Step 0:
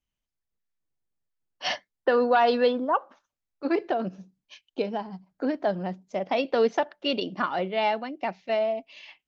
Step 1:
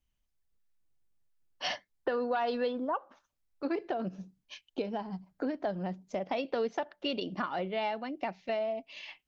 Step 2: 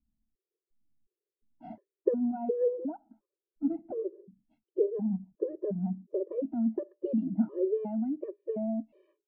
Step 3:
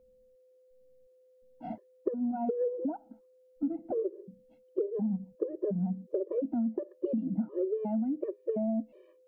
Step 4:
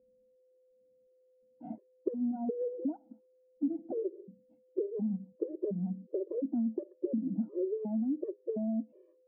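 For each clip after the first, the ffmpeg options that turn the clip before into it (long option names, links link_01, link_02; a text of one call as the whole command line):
ffmpeg -i in.wav -af "lowshelf=frequency=93:gain=9,acompressor=threshold=-35dB:ratio=2.5,volume=1dB" out.wav
ffmpeg -i in.wav -af "lowpass=frequency=400:width_type=q:width=4.3,equalizer=frequency=220:width_type=o:width=0.25:gain=14,afftfilt=real='re*gt(sin(2*PI*1.4*pts/sr)*(1-2*mod(floor(b*sr/1024/320),2)),0)':imag='im*gt(sin(2*PI*1.4*pts/sr)*(1-2*mod(floor(b*sr/1024/320),2)),0)':win_size=1024:overlap=0.75" out.wav
ffmpeg -i in.wav -af "acompressor=threshold=-33dB:ratio=10,aeval=exprs='val(0)+0.000501*sin(2*PI*510*n/s)':channel_layout=same,volume=5.5dB" out.wav
ffmpeg -i in.wav -af "bandpass=frequency=290:width_type=q:width=1.2:csg=0" out.wav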